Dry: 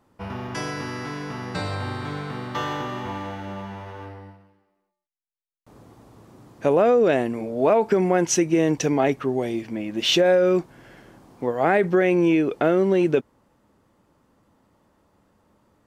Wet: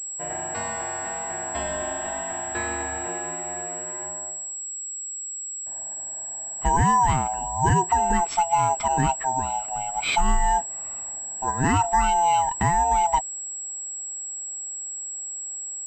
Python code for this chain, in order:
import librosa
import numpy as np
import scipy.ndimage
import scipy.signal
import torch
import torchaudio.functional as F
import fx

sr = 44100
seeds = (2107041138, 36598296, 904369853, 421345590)

y = fx.band_swap(x, sr, width_hz=500)
y = fx.highpass(y, sr, hz=130.0, slope=12, at=(3.08, 4.02))
y = fx.pwm(y, sr, carrier_hz=7700.0)
y = y * 10.0 ** (-1.5 / 20.0)